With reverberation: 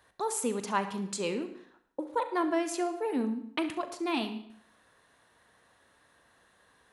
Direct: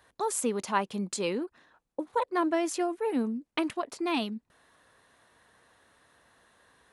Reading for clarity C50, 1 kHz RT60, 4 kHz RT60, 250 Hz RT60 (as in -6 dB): 10.0 dB, 0.65 s, 0.60 s, 0.65 s